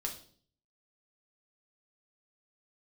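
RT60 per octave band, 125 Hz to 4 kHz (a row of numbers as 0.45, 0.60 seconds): 0.80, 0.65, 0.55, 0.45, 0.40, 0.50 seconds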